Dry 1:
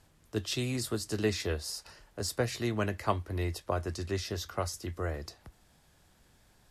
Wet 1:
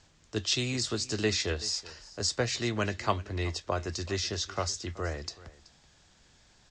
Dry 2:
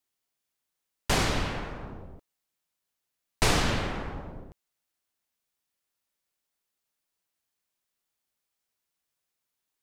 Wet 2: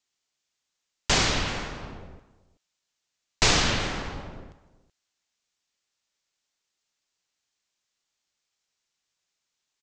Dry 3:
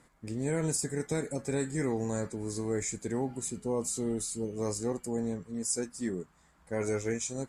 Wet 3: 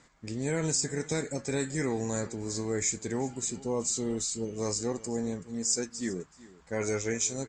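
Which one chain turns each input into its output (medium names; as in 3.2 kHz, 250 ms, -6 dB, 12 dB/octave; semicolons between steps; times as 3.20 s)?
steep low-pass 7.4 kHz 48 dB/octave; treble shelf 2.2 kHz +9 dB; delay 378 ms -19.5 dB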